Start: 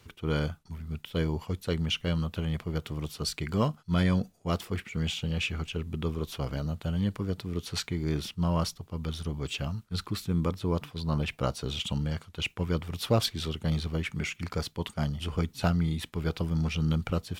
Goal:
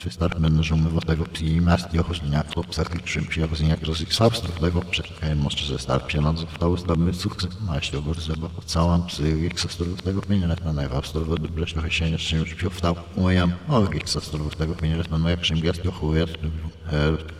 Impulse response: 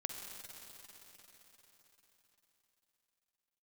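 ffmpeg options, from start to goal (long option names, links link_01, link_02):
-filter_complex "[0:a]areverse,lowpass=9400,bandreject=frequency=60:width_type=h:width=6,bandreject=frequency=120:width_type=h:width=6,bandreject=frequency=180:width_type=h:width=6,asplit=2[link_01][link_02];[link_02]asubboost=boost=7:cutoff=57[link_03];[1:a]atrim=start_sample=2205,adelay=115[link_04];[link_03][link_04]afir=irnorm=-1:irlink=0,volume=-14.5dB[link_05];[link_01][link_05]amix=inputs=2:normalize=0,volume=7.5dB"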